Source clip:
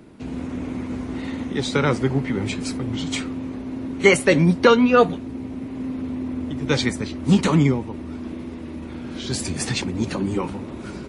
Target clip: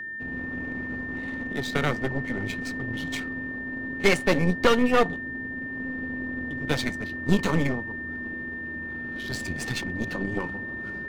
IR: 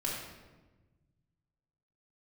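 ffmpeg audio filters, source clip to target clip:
-af "aeval=exprs='0.891*(cos(1*acos(clip(val(0)/0.891,-1,1)))-cos(1*PI/2))+0.158*(cos(6*acos(clip(val(0)/0.891,-1,1)))-cos(6*PI/2))':c=same,adynamicsmooth=sensitivity=7.5:basefreq=1800,aeval=exprs='val(0)+0.0501*sin(2*PI*1800*n/s)':c=same,volume=0.447"

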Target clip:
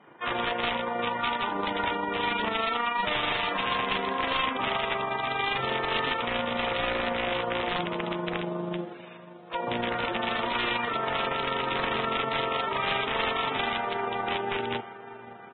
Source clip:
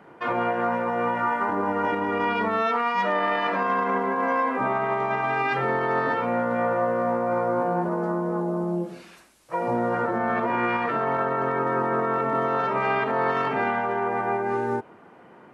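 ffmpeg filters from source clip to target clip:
-af "aeval=exprs='clip(val(0),-1,0.1)':c=same,aecho=1:1:558|1116|1674|2232|2790|3348:0.158|0.0919|0.0533|0.0309|0.0179|0.0104,acrusher=bits=6:mode=log:mix=0:aa=0.000001,aeval=exprs='(mod(7.5*val(0)+1,2)-1)/7.5':c=same,aresample=8000,aresample=44100,adynamicequalizer=threshold=0.00562:dfrequency=1600:dqfactor=7.7:tfrequency=1600:tqfactor=7.7:attack=5:release=100:ratio=0.375:range=2.5:mode=cutabove:tftype=bell,tremolo=f=25:d=0.462,highshelf=f=2100:g=10.5,bandreject=f=92.5:t=h:w=4,bandreject=f=185:t=h:w=4,bandreject=f=277.5:t=h:w=4,bandreject=f=370:t=h:w=4,bandreject=f=462.5:t=h:w=4,bandreject=f=555:t=h:w=4,bandreject=f=647.5:t=h:w=4,bandreject=f=740:t=h:w=4,bandreject=f=832.5:t=h:w=4,bandreject=f=925:t=h:w=4,bandreject=f=1017.5:t=h:w=4,bandreject=f=1110:t=h:w=4,bandreject=f=1202.5:t=h:w=4,bandreject=f=1295:t=h:w=4,bandreject=f=1387.5:t=h:w=4,bandreject=f=1480:t=h:w=4,bandreject=f=1572.5:t=h:w=4,bandreject=f=1665:t=h:w=4,bandreject=f=1757.5:t=h:w=4,bandreject=f=1850:t=h:w=4,bandreject=f=1942.5:t=h:w=4,bandreject=f=2035:t=h:w=4,bandreject=f=2127.5:t=h:w=4,bandreject=f=2220:t=h:w=4,bandreject=f=2312.5:t=h:w=4,bandreject=f=2405:t=h:w=4,bandreject=f=2497.5:t=h:w=4,bandreject=f=2590:t=h:w=4,bandreject=f=2682.5:t=h:w=4,bandreject=f=2775:t=h:w=4,bandreject=f=2867.5:t=h:w=4,bandreject=f=2960:t=h:w=4,bandreject=f=3052.5:t=h:w=4,bandreject=f=3145:t=h:w=4,bandreject=f=3237.5:t=h:w=4,bandreject=f=3330:t=h:w=4,bandreject=f=3422.5:t=h:w=4,bandreject=f=3515:t=h:w=4,volume=0.631" -ar 22050 -c:a libvorbis -b:a 16k

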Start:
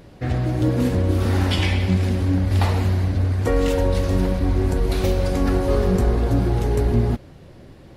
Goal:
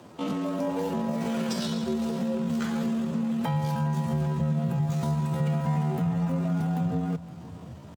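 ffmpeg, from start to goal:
-filter_complex "[0:a]asetrate=72056,aresample=44100,atempo=0.612027,asubboost=boost=4:cutoff=110,acompressor=threshold=0.0631:ratio=3,asplit=2[s0][s1];[s1]aecho=0:1:518:0.126[s2];[s0][s2]amix=inputs=2:normalize=0,afreqshift=75,volume=0.668"

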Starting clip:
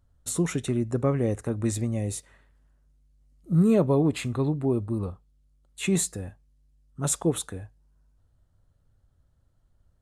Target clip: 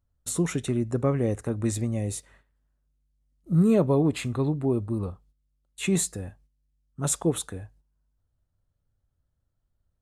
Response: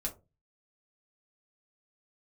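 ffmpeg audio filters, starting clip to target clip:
-af "agate=range=0.316:threshold=0.00158:ratio=16:detection=peak"

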